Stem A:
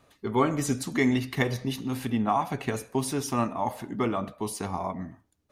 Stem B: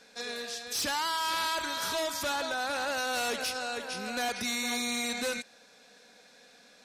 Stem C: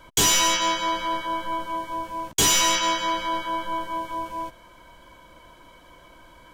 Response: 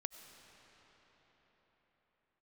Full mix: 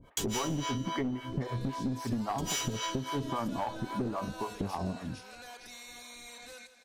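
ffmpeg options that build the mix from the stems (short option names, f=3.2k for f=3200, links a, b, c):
-filter_complex "[0:a]lowpass=f=2.1k:w=0.5412,lowpass=f=2.1k:w=1.3066,tiltshelf=f=750:g=7.5,volume=2.5dB[a];[1:a]bass=f=250:g=-13,treble=f=4k:g=2,alimiter=level_in=8.5dB:limit=-24dB:level=0:latency=1:release=219,volume=-8.5dB,adelay=1250,volume=-7.5dB,asplit=2[b][c];[c]volume=-13dB[d];[2:a]volume=-6.5dB,asplit=2[e][f];[f]volume=-20dB[g];[a][e]amix=inputs=2:normalize=0,acrossover=split=520[h][i];[h]aeval=exprs='val(0)*(1-1/2+1/2*cos(2*PI*3.7*n/s))':c=same[j];[i]aeval=exprs='val(0)*(1-1/2-1/2*cos(2*PI*3.7*n/s))':c=same[k];[j][k]amix=inputs=2:normalize=0,acompressor=threshold=-22dB:ratio=6,volume=0dB[l];[d][g]amix=inputs=2:normalize=0,aecho=0:1:165|330|495|660|825|990:1|0.43|0.185|0.0795|0.0342|0.0147[m];[b][l][m]amix=inputs=3:normalize=0,aeval=exprs='clip(val(0),-1,0.0631)':c=same,acompressor=threshold=-30dB:ratio=4"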